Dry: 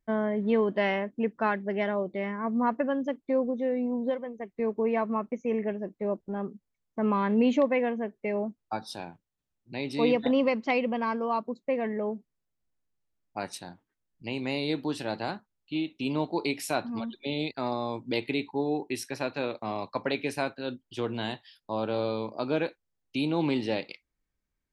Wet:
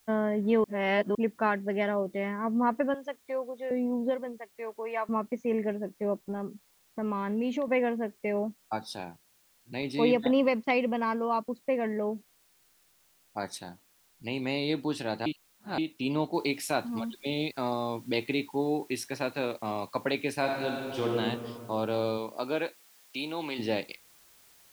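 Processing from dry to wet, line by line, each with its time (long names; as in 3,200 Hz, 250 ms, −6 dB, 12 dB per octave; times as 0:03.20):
0:00.64–0:01.15: reverse
0:02.94–0:03.71: high-pass filter 660 Hz
0:04.38–0:05.09: high-pass filter 720 Hz
0:06.32–0:07.68: downward compressor 2 to 1, threshold −32 dBFS
0:09.82–0:11.57: downward expander −38 dBFS
0:12.10–0:13.57: Butterworth band-reject 2,700 Hz, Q 3.2
0:15.26–0:15.78: reverse
0:16.34: noise floor change −66 dB −59 dB
0:20.39–0:21.14: thrown reverb, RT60 2.2 s, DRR −1 dB
0:22.17–0:23.58: high-pass filter 290 Hz → 1,100 Hz 6 dB per octave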